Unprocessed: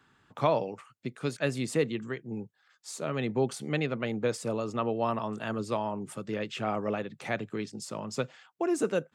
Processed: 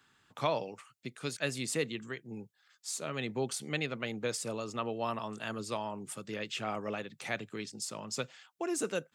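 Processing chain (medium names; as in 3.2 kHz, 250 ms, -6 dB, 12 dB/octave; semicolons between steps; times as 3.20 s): treble shelf 2 kHz +11.5 dB; trim -7 dB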